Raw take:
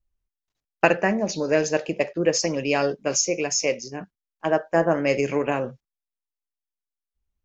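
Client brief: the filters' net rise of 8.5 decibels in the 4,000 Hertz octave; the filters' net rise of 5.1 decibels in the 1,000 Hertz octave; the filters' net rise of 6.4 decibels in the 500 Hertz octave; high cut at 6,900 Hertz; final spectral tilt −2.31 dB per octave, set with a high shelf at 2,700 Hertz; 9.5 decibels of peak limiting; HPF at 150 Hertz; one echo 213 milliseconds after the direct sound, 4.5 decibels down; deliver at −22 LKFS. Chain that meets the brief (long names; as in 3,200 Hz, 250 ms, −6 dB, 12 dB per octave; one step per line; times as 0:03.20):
high-pass filter 150 Hz
low-pass filter 6,900 Hz
parametric band 500 Hz +6.5 dB
parametric band 1,000 Hz +3 dB
high-shelf EQ 2,700 Hz +6 dB
parametric band 4,000 Hz +7.5 dB
brickwall limiter −7 dBFS
single-tap delay 213 ms −4.5 dB
level −3.5 dB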